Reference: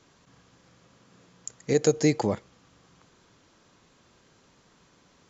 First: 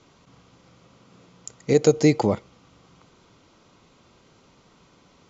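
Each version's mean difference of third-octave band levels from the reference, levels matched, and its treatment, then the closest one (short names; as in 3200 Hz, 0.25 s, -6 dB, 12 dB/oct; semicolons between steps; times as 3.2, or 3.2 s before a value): 1.0 dB: air absorption 67 m; notch 1700 Hz, Q 5.2; gain +5 dB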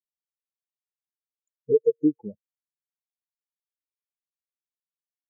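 15.0 dB: compressor 5:1, threshold -28 dBFS, peak gain reduction 11.5 dB; spectral expander 4:1; gain +7.5 dB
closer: first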